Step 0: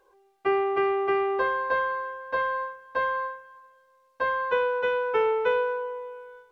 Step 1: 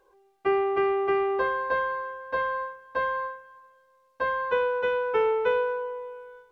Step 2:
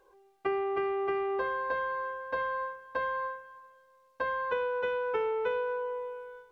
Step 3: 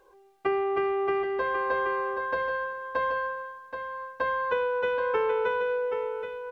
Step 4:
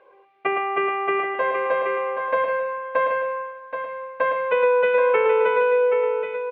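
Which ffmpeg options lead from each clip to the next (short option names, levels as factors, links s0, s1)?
-af "lowshelf=f=350:g=4.5,volume=0.841"
-af "acompressor=threshold=0.0316:ratio=3"
-af "aecho=1:1:777:0.422,volume=1.58"
-af "highpass=220,equalizer=f=250:t=q:w=4:g=-6,equalizer=f=370:t=q:w=4:g=-8,equalizer=f=610:t=q:w=4:g=5,equalizer=f=880:t=q:w=4:g=-5,equalizer=f=1500:t=q:w=4:g=-4,equalizer=f=2300:t=q:w=4:g=7,lowpass=f=2900:w=0.5412,lowpass=f=2900:w=1.3066,aecho=1:1:111:0.501,volume=2.37"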